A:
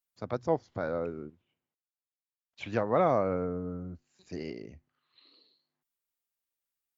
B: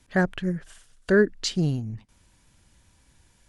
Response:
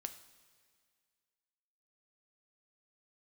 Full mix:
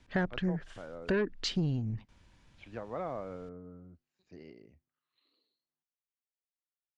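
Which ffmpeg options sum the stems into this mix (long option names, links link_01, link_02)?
-filter_complex "[0:a]volume=-12.5dB[link_01];[1:a]asoftclip=type=tanh:threshold=-16.5dB,volume=-1dB[link_02];[link_01][link_02]amix=inputs=2:normalize=0,lowpass=4200,acompressor=threshold=-27dB:ratio=6"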